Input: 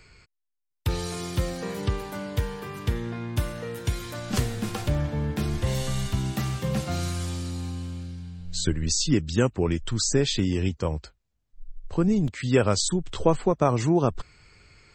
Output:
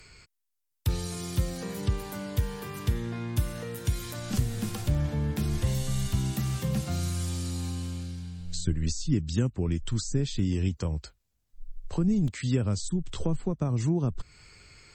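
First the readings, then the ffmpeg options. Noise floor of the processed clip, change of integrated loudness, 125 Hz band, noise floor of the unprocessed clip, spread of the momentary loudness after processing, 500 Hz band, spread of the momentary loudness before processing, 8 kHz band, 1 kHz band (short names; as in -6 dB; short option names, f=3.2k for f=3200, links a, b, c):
-77 dBFS, -3.5 dB, -0.5 dB, -77 dBFS, 7 LU, -9.5 dB, 10 LU, -6.5 dB, -10.5 dB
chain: -filter_complex "[0:a]aemphasis=mode=production:type=cd,acrossover=split=260[a][b];[b]acompressor=threshold=-37dB:ratio=6[c];[a][c]amix=inputs=2:normalize=0"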